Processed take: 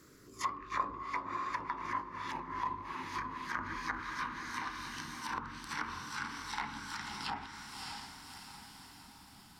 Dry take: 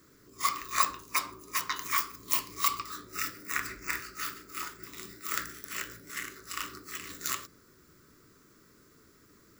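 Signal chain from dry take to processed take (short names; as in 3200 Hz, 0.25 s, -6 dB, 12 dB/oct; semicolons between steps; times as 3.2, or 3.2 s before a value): gliding pitch shift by -7.5 st starting unshifted; diffused feedback echo 0.598 s, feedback 51%, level -7 dB; treble ducked by the level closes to 800 Hz, closed at -29.5 dBFS; gain +1.5 dB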